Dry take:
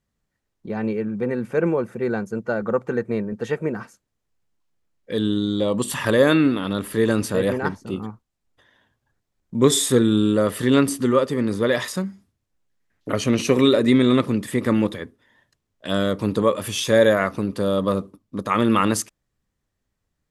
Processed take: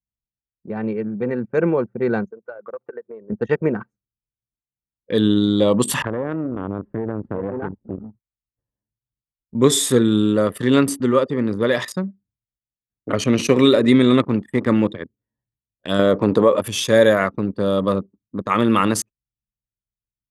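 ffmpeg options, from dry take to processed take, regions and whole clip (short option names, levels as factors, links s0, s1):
-filter_complex "[0:a]asettb=1/sr,asplit=3[s0][s1][s2];[s0]atrim=end=2.304[s3];[s1]atrim=start=2.3:end=3.3,asetpts=PTS-STARTPTS,afade=t=in:d=0.004:c=qsin,afade=t=out:st=0.996:d=0.004:c=qsin,highpass=510,acompressor=threshold=0.0224:ratio=3:attack=3.2:release=140:knee=1:detection=peak[s4];[s2]atrim=start=3.296[s5];[s3][s4]acrossfade=d=0.004:c1=hsin:c2=qsin[s6];[s6][s5]acrossfade=d=0.004:c1=qsin:c2=hsin,asettb=1/sr,asplit=3[s7][s8][s9];[s7]atrim=end=6.024[s10];[s8]atrim=start=6.02:end=9.55,asetpts=PTS-STARTPTS,afade=t=in:d=0.004:c=qsin,afade=t=out:st=3.526:d=0.004:c=qsin,aeval=exprs='if(lt(val(0),0),0.251*val(0),val(0))':c=same,lowpass=1400,acompressor=threshold=0.0708:ratio=10:attack=3.2:release=140:knee=1:detection=peak[s11];[s9]atrim=start=9.546[s12];[s10][s11]acrossfade=d=0.004:c1=hsin:c2=qsin[s13];[s13][s12]acrossfade=d=0.004:c1=qsin:c2=hsin,asettb=1/sr,asplit=3[s14][s15][s16];[s14]atrim=end=14.234[s17];[s15]atrim=start=14.23:end=14.64,asetpts=PTS-STARTPTS,afade=t=in:d=0.004:c=qsin,afade=t=out:st=0.406:d=0.004:c=qsin,equalizer=f=920:w=2.1:g=6,aeval=exprs='sgn(val(0))*max(abs(val(0))-0.00708,0)':c=same[s18];[s16]atrim=start=14.636[s19];[s17][s18]acrossfade=d=0.004:c1=hsin:c2=qsin[s20];[s20][s19]acrossfade=d=0.004:c1=qsin:c2=hsin,asettb=1/sr,asplit=3[s21][s22][s23];[s21]atrim=end=15.994[s24];[s22]atrim=start=15.99:end=16.61,asetpts=PTS-STARTPTS,afade=t=in:d=0.004:c=qsin,afade=t=out:st=0.616:d=0.004:c=qsin,equalizer=f=590:t=o:w=2.6:g=9,acompressor=threshold=0.251:ratio=3:attack=3.2:release=140:knee=1:detection=peak[s25];[s23]atrim=start=16.606[s26];[s24][s25]acrossfade=d=0.004:c1=hsin:c2=qsin[s27];[s27][s26]acrossfade=d=0.004:c1=qsin:c2=hsin,anlmdn=39.8,highpass=70,dynaudnorm=f=530:g=7:m=2"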